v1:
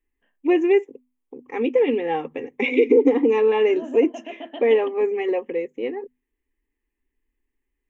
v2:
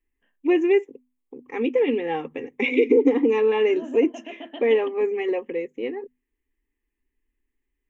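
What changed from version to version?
master: add bell 680 Hz -4 dB 1.2 oct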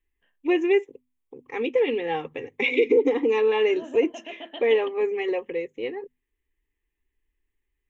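master: add fifteen-band EQ 100 Hz +10 dB, 250 Hz -9 dB, 4000 Hz +7 dB

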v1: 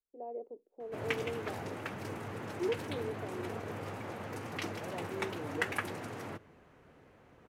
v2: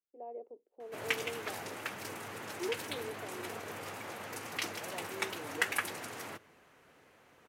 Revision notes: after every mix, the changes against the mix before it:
master: add tilt +3 dB/oct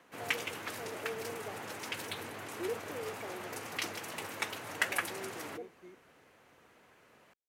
background: entry -0.80 s

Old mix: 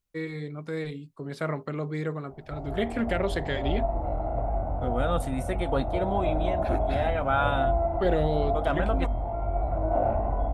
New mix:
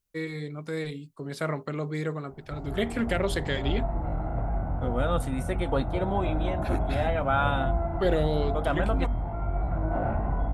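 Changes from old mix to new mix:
first voice: add high shelf 4600 Hz +9 dB; background: add fifteen-band EQ 160 Hz +9 dB, 630 Hz -8 dB, 1600 Hz +8 dB

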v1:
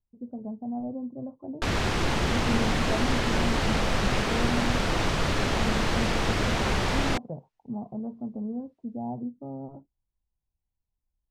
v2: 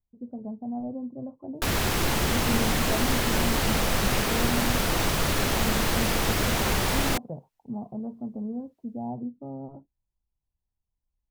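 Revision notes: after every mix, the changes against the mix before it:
background: remove air absorption 86 m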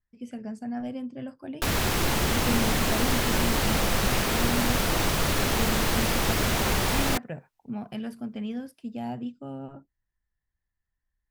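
speech: remove steep low-pass 1000 Hz 48 dB/oct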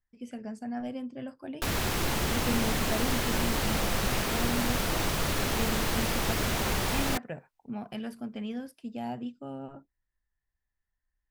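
speech: add bell 120 Hz -5 dB 2.2 oct; background -4.0 dB

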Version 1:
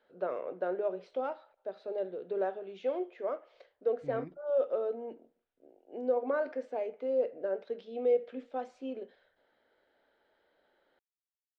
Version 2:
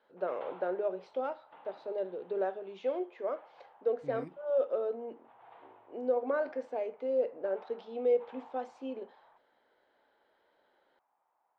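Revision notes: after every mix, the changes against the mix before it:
second voice: remove Bessel low-pass 2600 Hz; background: unmuted; master: add low shelf 73 Hz -8.5 dB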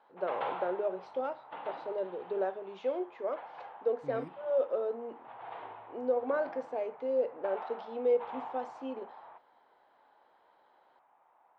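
background +11.5 dB

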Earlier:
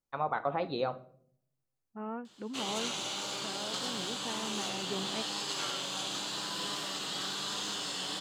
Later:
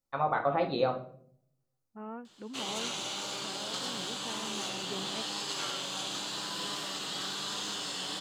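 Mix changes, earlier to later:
first voice: send +9.5 dB; second voice -3.0 dB

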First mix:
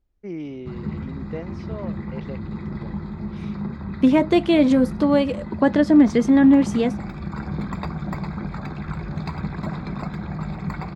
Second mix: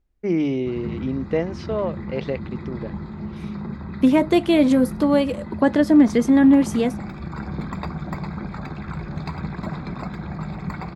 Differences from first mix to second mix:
first voice +11.0 dB; second voice: remove LPF 6900 Hz 12 dB/oct; master: add notches 50/100/150/200 Hz

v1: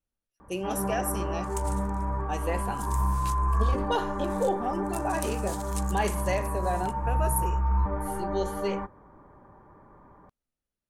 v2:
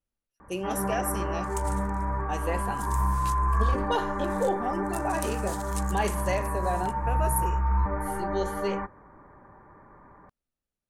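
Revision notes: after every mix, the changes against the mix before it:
first sound: add synth low-pass 2000 Hz, resonance Q 2.3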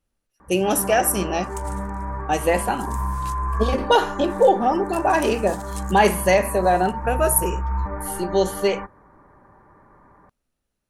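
speech +12.0 dB

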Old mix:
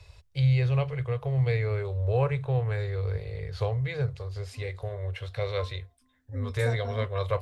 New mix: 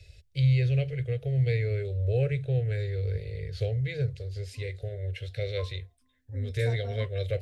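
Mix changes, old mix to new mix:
first voice: add Butterworth band-stop 1000 Hz, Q 0.78; second voice -5.0 dB

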